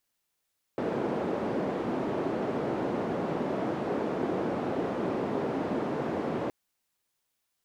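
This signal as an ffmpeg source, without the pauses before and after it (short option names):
-f lavfi -i "anoisesrc=c=white:d=5.72:r=44100:seed=1,highpass=f=220,lowpass=f=430,volume=-6.3dB"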